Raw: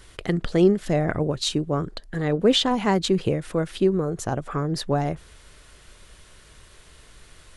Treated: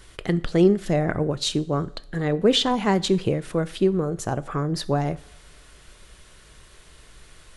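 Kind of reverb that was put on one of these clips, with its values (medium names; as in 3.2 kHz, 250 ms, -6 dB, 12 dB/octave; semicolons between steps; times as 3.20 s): two-slope reverb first 0.48 s, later 1.7 s, from -18 dB, DRR 15.5 dB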